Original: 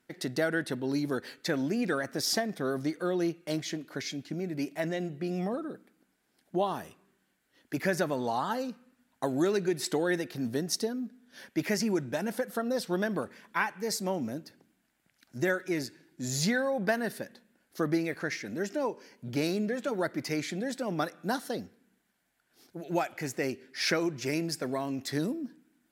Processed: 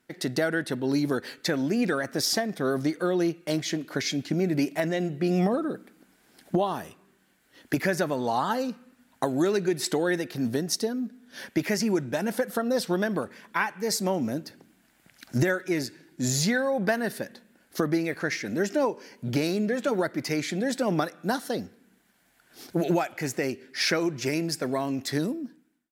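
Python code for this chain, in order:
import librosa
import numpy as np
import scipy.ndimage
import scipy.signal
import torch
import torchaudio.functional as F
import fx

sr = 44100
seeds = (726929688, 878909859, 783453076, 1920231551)

y = fx.fade_out_tail(x, sr, length_s=1.43)
y = fx.recorder_agc(y, sr, target_db=-18.0, rise_db_per_s=8.8, max_gain_db=30)
y = F.gain(torch.from_numpy(y), 2.5).numpy()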